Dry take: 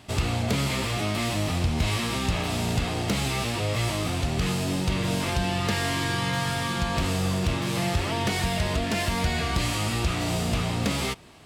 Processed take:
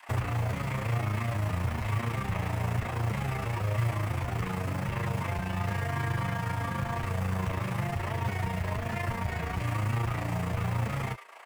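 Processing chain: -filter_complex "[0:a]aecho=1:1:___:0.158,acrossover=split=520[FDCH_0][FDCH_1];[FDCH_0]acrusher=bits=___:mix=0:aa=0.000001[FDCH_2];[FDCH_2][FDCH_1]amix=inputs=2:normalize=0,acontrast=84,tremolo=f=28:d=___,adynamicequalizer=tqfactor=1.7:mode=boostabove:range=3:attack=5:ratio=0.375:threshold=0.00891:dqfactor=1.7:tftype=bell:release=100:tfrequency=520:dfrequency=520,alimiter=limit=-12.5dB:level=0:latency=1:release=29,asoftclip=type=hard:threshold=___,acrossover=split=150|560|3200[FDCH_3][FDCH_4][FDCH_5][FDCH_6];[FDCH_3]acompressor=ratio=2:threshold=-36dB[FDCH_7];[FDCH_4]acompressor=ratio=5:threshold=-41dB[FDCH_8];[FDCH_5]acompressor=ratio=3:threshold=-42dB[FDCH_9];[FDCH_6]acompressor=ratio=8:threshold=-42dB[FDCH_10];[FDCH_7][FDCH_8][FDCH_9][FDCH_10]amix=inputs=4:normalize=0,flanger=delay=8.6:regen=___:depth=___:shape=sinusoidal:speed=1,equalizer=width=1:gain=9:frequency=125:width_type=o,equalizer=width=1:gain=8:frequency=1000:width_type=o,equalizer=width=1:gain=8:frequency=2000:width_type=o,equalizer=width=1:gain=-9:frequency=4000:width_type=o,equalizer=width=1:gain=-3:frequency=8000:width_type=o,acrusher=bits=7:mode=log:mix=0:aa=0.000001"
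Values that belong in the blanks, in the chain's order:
96, 5, 0.857, -19.5dB, -18, 2.2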